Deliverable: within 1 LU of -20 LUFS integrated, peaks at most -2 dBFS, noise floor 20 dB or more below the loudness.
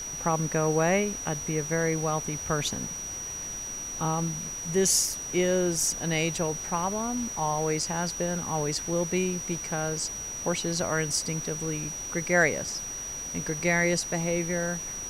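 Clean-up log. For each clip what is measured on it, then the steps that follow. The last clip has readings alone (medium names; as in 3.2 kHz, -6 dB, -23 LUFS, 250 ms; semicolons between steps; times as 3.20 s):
steady tone 5.8 kHz; tone level -34 dBFS; noise floor -36 dBFS; noise floor target -48 dBFS; loudness -27.5 LUFS; peak level -10.5 dBFS; loudness target -20.0 LUFS
-> band-stop 5.8 kHz, Q 30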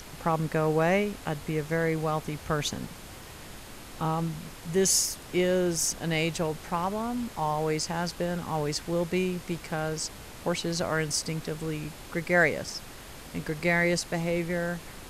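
steady tone not found; noise floor -45 dBFS; noise floor target -49 dBFS
-> noise print and reduce 6 dB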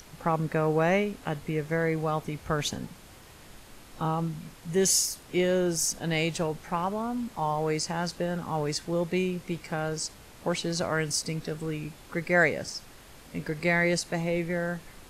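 noise floor -51 dBFS; loudness -28.5 LUFS; peak level -11.5 dBFS; loudness target -20.0 LUFS
-> trim +8.5 dB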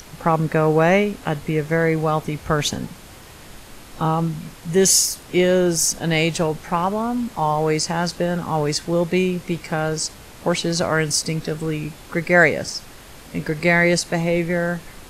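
loudness -20.0 LUFS; peak level -3.0 dBFS; noise floor -42 dBFS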